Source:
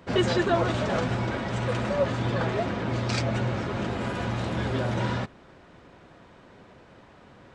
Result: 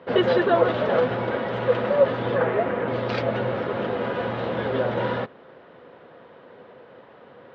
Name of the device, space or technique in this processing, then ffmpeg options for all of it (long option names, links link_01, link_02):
kitchen radio: -filter_complex "[0:a]highpass=180,equalizer=frequency=190:width_type=q:width=4:gain=-4,equalizer=frequency=310:width_type=q:width=4:gain=-4,equalizer=frequency=490:width_type=q:width=4:gain=9,equalizer=frequency=2400:width_type=q:width=4:gain=-5,lowpass=frequency=3400:width=0.5412,lowpass=frequency=3400:width=1.3066,asettb=1/sr,asplit=3[link_01][link_02][link_03];[link_01]atrim=end=2.364[link_04];[link_02]atrim=start=2.36:end=2.88,asetpts=PTS-STARTPTS,afade=type=in:duration=0.004:curve=qsin,afade=type=out:start_time=0.516:duration=0.004:curve=qsin,highshelf=frequency=2900:width_type=q:width=1.5:gain=-6[link_05];[link_03]atrim=start=2.876[link_06];[link_04][link_05]acrossfade=duration=0.004:curve1=hsin:curve2=qsin[link_07];[link_07][link_06]acrossfade=duration=0.004:curve1=qsin:curve2=hsin,volume=3.5dB"